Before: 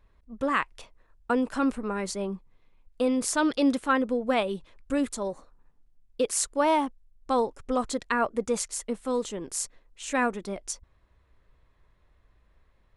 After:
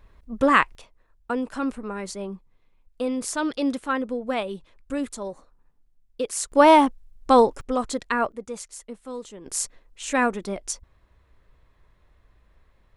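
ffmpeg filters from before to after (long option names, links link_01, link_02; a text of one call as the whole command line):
ffmpeg -i in.wav -af "asetnsamples=nb_out_samples=441:pad=0,asendcmd='0.75 volume volume -1.5dB;6.52 volume volume 9.5dB;7.61 volume volume 2dB;8.32 volume volume -7dB;9.46 volume volume 4dB',volume=8.5dB" out.wav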